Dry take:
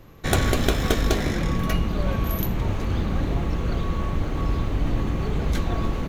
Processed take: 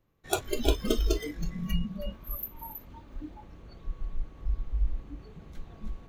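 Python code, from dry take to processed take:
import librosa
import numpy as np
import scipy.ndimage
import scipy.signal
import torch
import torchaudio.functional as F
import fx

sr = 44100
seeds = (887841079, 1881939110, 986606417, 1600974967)

y = fx.lower_of_two(x, sr, delay_ms=3.3, at=(1.99, 3.43))
y = y + 10.0 ** (-5.5 / 20.0) * np.pad(y, (int(321 * sr / 1000.0), 0))[:len(y)]
y = fx.noise_reduce_blind(y, sr, reduce_db=22)
y = F.gain(torch.from_numpy(y), -3.0).numpy()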